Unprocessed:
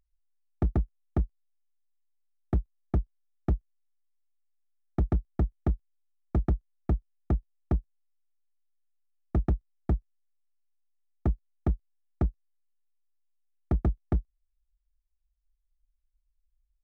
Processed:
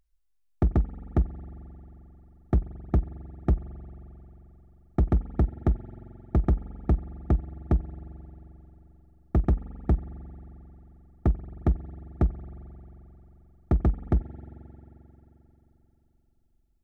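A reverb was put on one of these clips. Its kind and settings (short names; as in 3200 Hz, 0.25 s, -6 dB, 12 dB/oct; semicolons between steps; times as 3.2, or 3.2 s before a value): spring tank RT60 3.9 s, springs 44 ms, chirp 25 ms, DRR 13.5 dB; gain +3.5 dB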